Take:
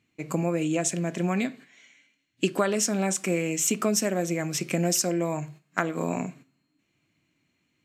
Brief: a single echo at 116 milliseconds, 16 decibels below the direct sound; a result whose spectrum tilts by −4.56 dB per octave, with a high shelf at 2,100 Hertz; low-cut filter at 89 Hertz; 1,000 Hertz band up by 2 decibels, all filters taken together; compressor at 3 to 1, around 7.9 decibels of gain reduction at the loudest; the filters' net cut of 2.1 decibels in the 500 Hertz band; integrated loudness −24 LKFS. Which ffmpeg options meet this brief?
ffmpeg -i in.wav -af "highpass=89,equalizer=frequency=500:width_type=o:gain=-4,equalizer=frequency=1000:width_type=o:gain=5.5,highshelf=frequency=2100:gain=-5,acompressor=threshold=-32dB:ratio=3,aecho=1:1:116:0.158,volume=11dB" out.wav

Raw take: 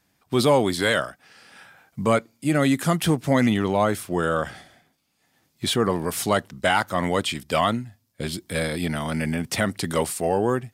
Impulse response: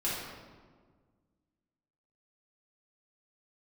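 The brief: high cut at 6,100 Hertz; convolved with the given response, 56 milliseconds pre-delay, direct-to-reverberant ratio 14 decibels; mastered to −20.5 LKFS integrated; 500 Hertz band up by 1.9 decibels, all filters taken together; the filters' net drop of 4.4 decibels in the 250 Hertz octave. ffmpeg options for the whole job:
-filter_complex "[0:a]lowpass=6100,equalizer=frequency=250:width_type=o:gain=-7,equalizer=frequency=500:width_type=o:gain=4,asplit=2[link_01][link_02];[1:a]atrim=start_sample=2205,adelay=56[link_03];[link_02][link_03]afir=irnorm=-1:irlink=0,volume=-21dB[link_04];[link_01][link_04]amix=inputs=2:normalize=0,volume=3dB"

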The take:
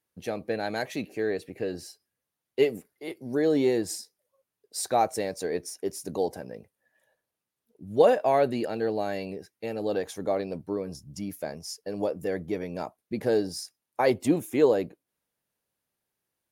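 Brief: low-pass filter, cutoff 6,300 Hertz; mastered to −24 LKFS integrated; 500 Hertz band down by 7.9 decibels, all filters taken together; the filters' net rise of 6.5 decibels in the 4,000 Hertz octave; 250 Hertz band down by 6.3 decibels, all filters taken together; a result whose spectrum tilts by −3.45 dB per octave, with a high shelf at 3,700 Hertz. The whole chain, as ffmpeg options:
ffmpeg -i in.wav -af "lowpass=6300,equalizer=frequency=250:width_type=o:gain=-5,equalizer=frequency=500:width_type=o:gain=-8.5,highshelf=frequency=3700:gain=5.5,equalizer=frequency=4000:width_type=o:gain=5.5,volume=9.5dB" out.wav

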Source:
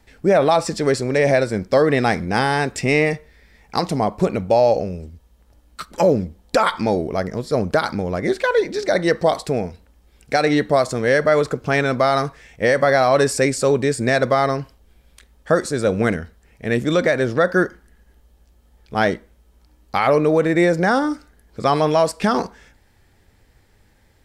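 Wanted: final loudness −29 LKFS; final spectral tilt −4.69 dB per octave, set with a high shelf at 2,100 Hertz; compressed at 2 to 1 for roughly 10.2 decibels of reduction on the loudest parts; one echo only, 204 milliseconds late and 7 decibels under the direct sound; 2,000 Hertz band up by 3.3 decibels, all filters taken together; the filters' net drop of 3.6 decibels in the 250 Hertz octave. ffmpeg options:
ffmpeg -i in.wav -af "equalizer=frequency=250:width_type=o:gain=-5,equalizer=frequency=2000:width_type=o:gain=8.5,highshelf=frequency=2100:gain=-8.5,acompressor=threshold=-31dB:ratio=2,aecho=1:1:204:0.447,volume=-1dB" out.wav

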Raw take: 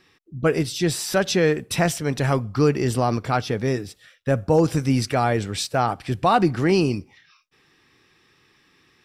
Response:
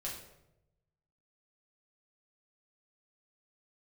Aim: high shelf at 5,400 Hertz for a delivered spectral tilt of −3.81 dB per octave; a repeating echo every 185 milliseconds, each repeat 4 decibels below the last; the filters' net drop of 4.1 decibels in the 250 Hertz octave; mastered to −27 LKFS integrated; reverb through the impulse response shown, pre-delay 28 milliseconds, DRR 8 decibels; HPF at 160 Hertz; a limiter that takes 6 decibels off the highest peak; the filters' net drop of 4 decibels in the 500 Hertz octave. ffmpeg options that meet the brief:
-filter_complex "[0:a]highpass=160,equalizer=frequency=250:width_type=o:gain=-3,equalizer=frequency=500:width_type=o:gain=-4,highshelf=frequency=5400:gain=6.5,alimiter=limit=-13.5dB:level=0:latency=1,aecho=1:1:185|370|555|740|925|1110|1295|1480|1665:0.631|0.398|0.25|0.158|0.0994|0.0626|0.0394|0.0249|0.0157,asplit=2[link_01][link_02];[1:a]atrim=start_sample=2205,adelay=28[link_03];[link_02][link_03]afir=irnorm=-1:irlink=0,volume=-8dB[link_04];[link_01][link_04]amix=inputs=2:normalize=0,volume=-3.5dB"

